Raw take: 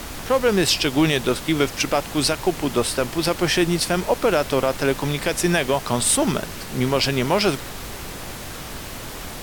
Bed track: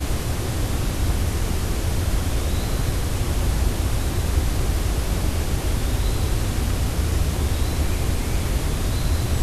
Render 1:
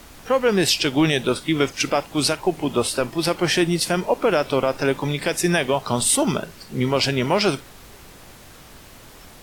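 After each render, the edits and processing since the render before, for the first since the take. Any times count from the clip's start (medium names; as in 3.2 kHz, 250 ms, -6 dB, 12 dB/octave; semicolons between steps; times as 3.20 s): noise print and reduce 11 dB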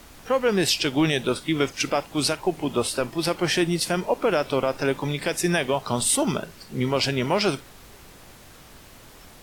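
trim -3 dB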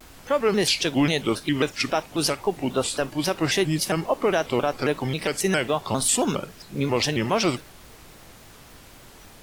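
vibrato with a chosen wave square 3.7 Hz, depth 160 cents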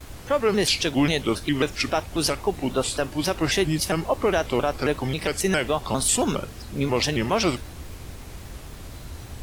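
add bed track -17 dB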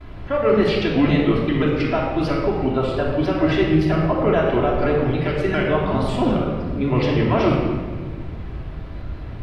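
distance through air 380 m; simulated room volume 1800 m³, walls mixed, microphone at 3 m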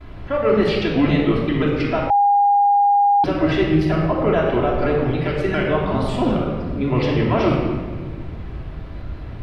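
2.10–3.24 s: bleep 811 Hz -11.5 dBFS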